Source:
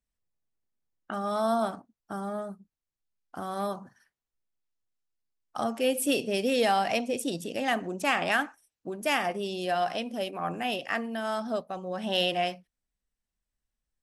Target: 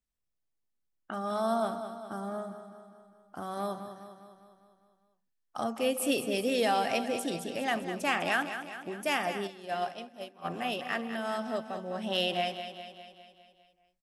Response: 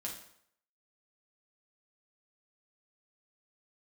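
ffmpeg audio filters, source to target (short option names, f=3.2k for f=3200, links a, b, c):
-filter_complex "[0:a]aecho=1:1:202|404|606|808|1010|1212|1414:0.316|0.18|0.103|0.0586|0.0334|0.019|0.0108,asplit=3[a][b][c];[a]afade=t=out:st=9.46:d=0.02[d];[b]agate=range=-33dB:threshold=-23dB:ratio=3:detection=peak,afade=t=in:st=9.46:d=0.02,afade=t=out:st=10.44:d=0.02[e];[c]afade=t=in:st=10.44:d=0.02[f];[d][e][f]amix=inputs=3:normalize=0,volume=-3dB"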